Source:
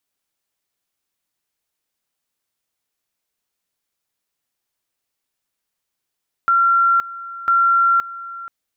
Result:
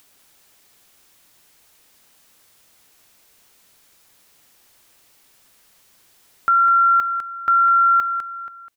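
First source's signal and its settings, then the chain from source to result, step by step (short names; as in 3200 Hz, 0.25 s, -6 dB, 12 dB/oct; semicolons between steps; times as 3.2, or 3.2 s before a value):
two-level tone 1370 Hz -11.5 dBFS, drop 17.5 dB, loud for 0.52 s, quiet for 0.48 s, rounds 2
upward compressor, threshold -37 dBFS; echo 0.202 s -8.5 dB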